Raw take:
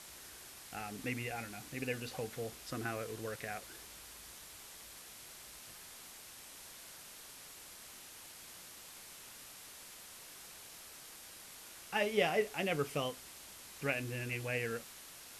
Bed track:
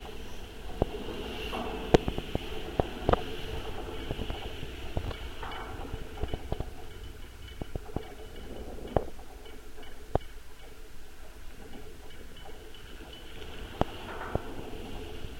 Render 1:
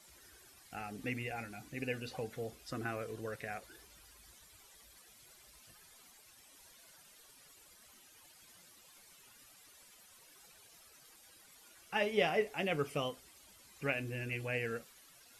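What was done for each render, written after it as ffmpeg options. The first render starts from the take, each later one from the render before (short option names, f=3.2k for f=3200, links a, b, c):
-af "afftdn=nr=13:nf=-53"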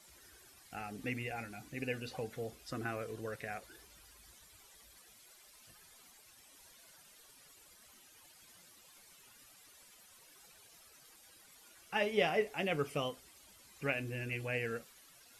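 -filter_complex "[0:a]asettb=1/sr,asplit=3[a][b][c];[a]atrim=end=5.194[d];[b]atrim=start=5.19:end=5.61,asetpts=PTS-STARTPTS,afade=t=in:d=0.004:c=qsin,afade=t=out:st=0.416:d=0.004:c=qsin,equalizer=f=79:t=o:w=2.3:g=-14[e];[c]atrim=start=5.606[f];[d][e]acrossfade=d=0.004:c1=hsin:c2=qsin[g];[g][f]acrossfade=d=0.004:c1=qsin:c2=hsin"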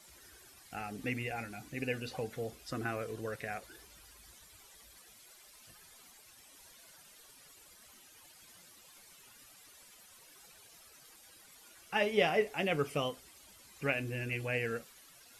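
-af "volume=2.5dB"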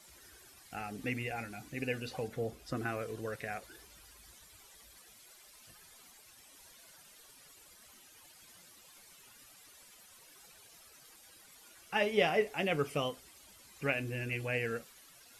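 -filter_complex "[0:a]asettb=1/sr,asplit=3[a][b][c];[a]atrim=end=2.284[d];[b]atrim=start=2.28:end=2.77,asetpts=PTS-STARTPTS,afade=t=in:d=0.004:c=qsin,afade=t=out:st=0.486:d=0.004:c=qsin,tiltshelf=f=1.2k:g=3.5[e];[c]atrim=start=2.766[f];[d][e]acrossfade=d=0.004:c1=hsin:c2=qsin[g];[g][f]acrossfade=d=0.004:c1=qsin:c2=hsin"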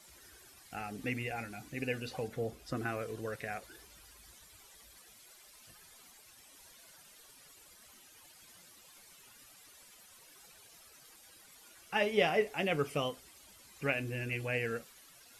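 -af anull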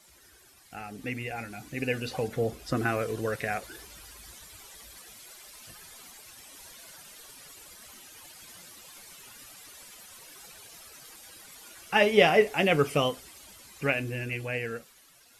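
-af "dynaudnorm=f=210:g=17:m=9dB"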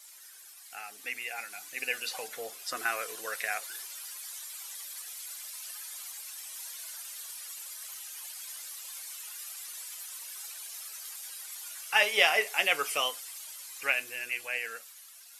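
-af "highpass=930,highshelf=f=5k:g=10"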